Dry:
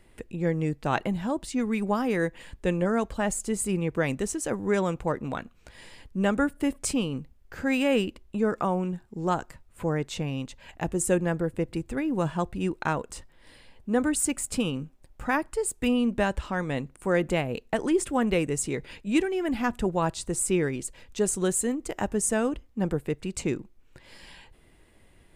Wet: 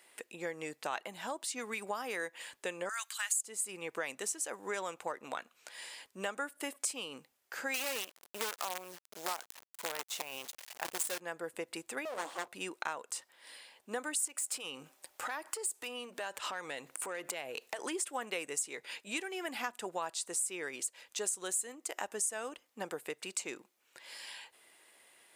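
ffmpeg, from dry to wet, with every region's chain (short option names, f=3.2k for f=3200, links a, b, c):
-filter_complex "[0:a]asettb=1/sr,asplit=3[a][b][c];[a]atrim=end=2.894[d];[b]atrim=start=2.89:end=3.41,asetpts=PTS-STARTPTS,afade=t=in:d=0.004:c=qsin,afade=t=out:st=0.516:d=0.004:c=qsin,highpass=f=1.3k:w=0.5412,highpass=f=1.3k:w=1.3066,highshelf=f=2.9k:g=10.5,bandreject=f=5.4k:w=9.5[e];[c]atrim=start=3.406[f];[d][e]acrossfade=d=0.004:c1=hsin:c2=qsin[g];[g][f]acrossfade=d=0.004:c1=qsin:c2=hsin,asettb=1/sr,asplit=3[h][i][j];[h]atrim=end=7.744[k];[i]atrim=start=7.74:end=11.2,asetpts=PTS-STARTPTS,afade=t=in:d=0.004:c=qsin,afade=t=out:st=3.456:d=0.004:c=qsin,asubboost=boost=4.5:cutoff=84,acrusher=bits=5:dc=4:mix=0:aa=0.000001[l];[j]atrim=start=11.196[m];[k][l]acrossfade=d=0.004:c1=hsin:c2=qsin[n];[n][m]acrossfade=d=0.004:c1=qsin:c2=hsin,asettb=1/sr,asplit=3[o][p][q];[o]atrim=end=12.054[r];[p]atrim=start=12.05:end=12.48,asetpts=PTS-STARTPTS,afade=t=in:d=0.004:c=qsin,afade=t=out:st=0.426:d=0.004:c=qsin,asuperstop=centerf=1900:order=8:qfactor=1,bandreject=f=94.32:t=h:w=4,bandreject=f=188.64:t=h:w=4,bandreject=f=282.96:t=h:w=4,bandreject=f=377.28:t=h:w=4,bandreject=f=471.6:t=h:w=4,bandreject=f=565.92:t=h:w=4,bandreject=f=660.24:t=h:w=4,bandreject=f=754.56:t=h:w=4,bandreject=f=848.88:t=h:w=4,aeval=exprs='abs(val(0))':c=same[s];[q]atrim=start=12.476[t];[r][s]acrossfade=d=0.004:c1=hsin:c2=qsin[u];[u][t]acrossfade=d=0.004:c1=qsin:c2=hsin,asettb=1/sr,asplit=3[v][w][x];[v]atrim=end=14.274[y];[w]atrim=start=14.27:end=17.82,asetpts=PTS-STARTPTS,afade=t=in:d=0.004:c=qsin,afade=t=out:st=3.546:d=0.004:c=qsin,acompressor=threshold=-35dB:ratio=16:attack=3.2:release=140:knee=1:detection=peak,equalizer=f=220:w=7.9:g=-12,aeval=exprs='0.0562*sin(PI/2*1.78*val(0)/0.0562)':c=same[z];[x]atrim=start=17.816[aa];[y][z]acrossfade=d=0.004:c1=hsin:c2=qsin[ab];[ab][aa]acrossfade=d=0.004:c1=qsin:c2=hsin,highpass=660,highshelf=f=4.1k:g=8,acompressor=threshold=-36dB:ratio=3"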